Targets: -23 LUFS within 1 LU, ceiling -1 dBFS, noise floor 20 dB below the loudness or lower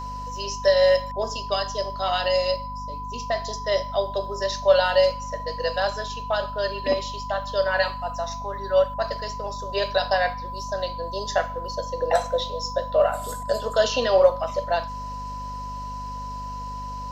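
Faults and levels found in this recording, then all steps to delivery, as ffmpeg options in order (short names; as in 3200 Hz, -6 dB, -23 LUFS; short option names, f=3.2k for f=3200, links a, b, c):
hum 50 Hz; harmonics up to 250 Hz; hum level -35 dBFS; steady tone 1000 Hz; tone level -32 dBFS; loudness -25.0 LUFS; peak -5.5 dBFS; loudness target -23.0 LUFS
-> -af "bandreject=f=50:t=h:w=4,bandreject=f=100:t=h:w=4,bandreject=f=150:t=h:w=4,bandreject=f=200:t=h:w=4,bandreject=f=250:t=h:w=4"
-af "bandreject=f=1k:w=30"
-af "volume=2dB"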